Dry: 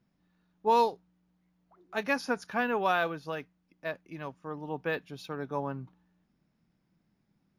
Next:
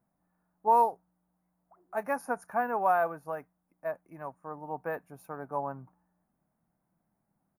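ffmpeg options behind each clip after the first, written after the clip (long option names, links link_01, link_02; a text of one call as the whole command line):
ffmpeg -i in.wav -af "firequalizer=gain_entry='entry(410,0);entry(680,11);entry(2200,-5);entry(3300,-23);entry(9300,10)':delay=0.05:min_phase=1,volume=-6dB" out.wav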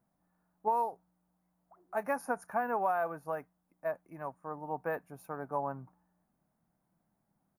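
ffmpeg -i in.wav -af "acompressor=threshold=-27dB:ratio=6" out.wav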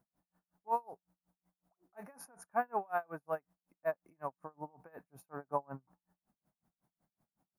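ffmpeg -i in.wav -af "aeval=exprs='val(0)*pow(10,-34*(0.5-0.5*cos(2*PI*5.4*n/s))/20)':channel_layout=same,volume=2dB" out.wav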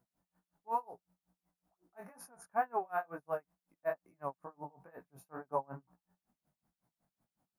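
ffmpeg -i in.wav -af "flanger=delay=16:depth=5.8:speed=2.2,volume=2.5dB" out.wav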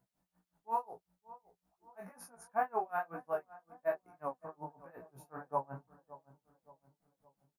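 ffmpeg -i in.wav -filter_complex "[0:a]flanger=delay=15:depth=3.7:speed=0.55,asplit=2[link_01][link_02];[link_02]adelay=569,lowpass=frequency=1100:poles=1,volume=-16.5dB,asplit=2[link_03][link_04];[link_04]adelay=569,lowpass=frequency=1100:poles=1,volume=0.51,asplit=2[link_05][link_06];[link_06]adelay=569,lowpass=frequency=1100:poles=1,volume=0.51,asplit=2[link_07][link_08];[link_08]adelay=569,lowpass=frequency=1100:poles=1,volume=0.51,asplit=2[link_09][link_10];[link_10]adelay=569,lowpass=frequency=1100:poles=1,volume=0.51[link_11];[link_01][link_03][link_05][link_07][link_09][link_11]amix=inputs=6:normalize=0,volume=3.5dB" out.wav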